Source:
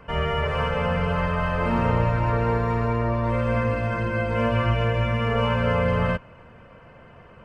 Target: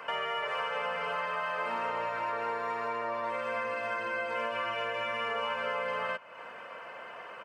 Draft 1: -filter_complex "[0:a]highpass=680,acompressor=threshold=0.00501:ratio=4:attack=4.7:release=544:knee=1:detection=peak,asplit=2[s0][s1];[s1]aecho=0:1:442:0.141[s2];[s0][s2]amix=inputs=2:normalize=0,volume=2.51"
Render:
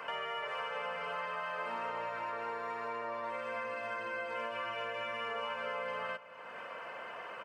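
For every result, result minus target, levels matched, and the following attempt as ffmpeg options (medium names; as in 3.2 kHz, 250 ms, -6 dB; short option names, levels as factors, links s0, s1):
echo-to-direct +11 dB; compression: peak gain reduction +5 dB
-filter_complex "[0:a]highpass=680,acompressor=threshold=0.00501:ratio=4:attack=4.7:release=544:knee=1:detection=peak,asplit=2[s0][s1];[s1]aecho=0:1:442:0.0398[s2];[s0][s2]amix=inputs=2:normalize=0,volume=2.51"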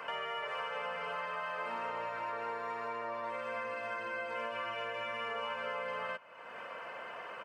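compression: peak gain reduction +5 dB
-filter_complex "[0:a]highpass=680,acompressor=threshold=0.0112:ratio=4:attack=4.7:release=544:knee=1:detection=peak,asplit=2[s0][s1];[s1]aecho=0:1:442:0.0398[s2];[s0][s2]amix=inputs=2:normalize=0,volume=2.51"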